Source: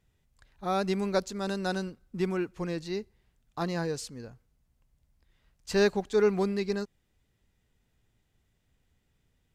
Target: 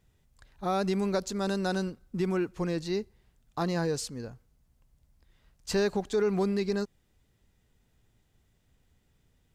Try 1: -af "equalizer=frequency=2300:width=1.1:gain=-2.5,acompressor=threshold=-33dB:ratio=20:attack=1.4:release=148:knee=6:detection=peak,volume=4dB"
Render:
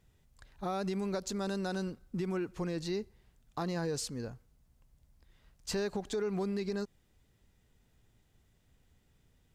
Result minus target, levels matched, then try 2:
downward compressor: peak gain reduction +7.5 dB
-af "equalizer=frequency=2300:width=1.1:gain=-2.5,acompressor=threshold=-25dB:ratio=20:attack=1.4:release=148:knee=6:detection=peak,volume=4dB"

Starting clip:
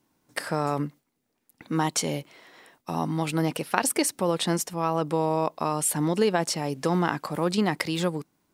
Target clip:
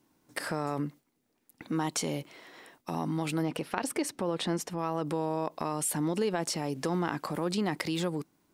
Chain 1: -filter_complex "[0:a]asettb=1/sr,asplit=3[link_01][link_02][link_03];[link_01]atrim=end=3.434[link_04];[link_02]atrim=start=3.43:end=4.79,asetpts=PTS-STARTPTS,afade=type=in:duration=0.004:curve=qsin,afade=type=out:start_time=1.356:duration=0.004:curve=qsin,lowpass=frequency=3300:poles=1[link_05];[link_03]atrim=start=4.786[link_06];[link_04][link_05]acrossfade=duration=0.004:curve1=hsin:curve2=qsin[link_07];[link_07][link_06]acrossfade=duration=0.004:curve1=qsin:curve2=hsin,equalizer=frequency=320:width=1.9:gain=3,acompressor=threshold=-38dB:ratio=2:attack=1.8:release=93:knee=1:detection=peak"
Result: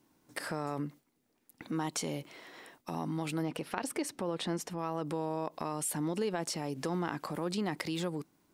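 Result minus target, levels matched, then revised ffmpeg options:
downward compressor: peak gain reduction +4 dB
-filter_complex "[0:a]asettb=1/sr,asplit=3[link_01][link_02][link_03];[link_01]atrim=end=3.434[link_04];[link_02]atrim=start=3.43:end=4.79,asetpts=PTS-STARTPTS,afade=type=in:duration=0.004:curve=qsin,afade=type=out:start_time=1.356:duration=0.004:curve=qsin,lowpass=frequency=3300:poles=1[link_05];[link_03]atrim=start=4.786[link_06];[link_04][link_05]acrossfade=duration=0.004:curve1=hsin:curve2=qsin[link_07];[link_07][link_06]acrossfade=duration=0.004:curve1=qsin:curve2=hsin,equalizer=frequency=320:width=1.9:gain=3,acompressor=threshold=-30.5dB:ratio=2:attack=1.8:release=93:knee=1:detection=peak"

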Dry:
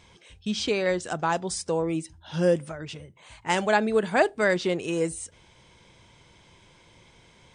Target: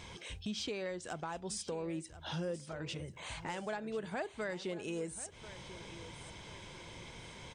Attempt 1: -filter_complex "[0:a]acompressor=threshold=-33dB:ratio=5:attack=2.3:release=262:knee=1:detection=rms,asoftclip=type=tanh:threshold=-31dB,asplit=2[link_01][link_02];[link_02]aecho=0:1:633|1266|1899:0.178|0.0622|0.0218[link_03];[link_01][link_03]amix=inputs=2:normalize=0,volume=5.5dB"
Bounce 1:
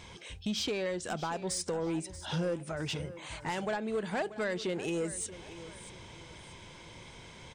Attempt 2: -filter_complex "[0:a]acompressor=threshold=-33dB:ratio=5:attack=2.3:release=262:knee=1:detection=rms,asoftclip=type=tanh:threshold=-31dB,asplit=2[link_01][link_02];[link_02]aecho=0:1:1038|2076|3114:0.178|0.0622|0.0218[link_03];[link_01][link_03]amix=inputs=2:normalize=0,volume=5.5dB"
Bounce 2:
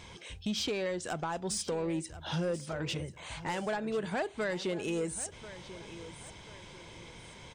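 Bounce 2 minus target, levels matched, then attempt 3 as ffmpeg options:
downward compressor: peak gain reduction −7 dB
-filter_complex "[0:a]acompressor=threshold=-42dB:ratio=5:attack=2.3:release=262:knee=1:detection=rms,asoftclip=type=tanh:threshold=-31dB,asplit=2[link_01][link_02];[link_02]aecho=0:1:1038|2076|3114:0.178|0.0622|0.0218[link_03];[link_01][link_03]amix=inputs=2:normalize=0,volume=5.5dB"

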